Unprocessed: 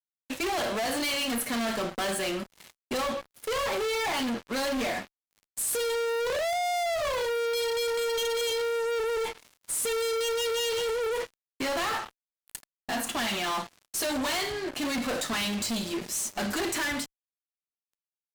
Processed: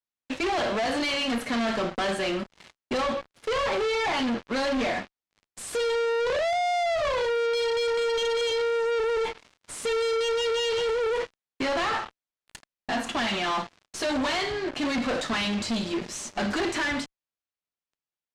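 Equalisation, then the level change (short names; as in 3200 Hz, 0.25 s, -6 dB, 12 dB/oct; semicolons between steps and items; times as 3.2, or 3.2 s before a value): air absorption 100 m; +3.5 dB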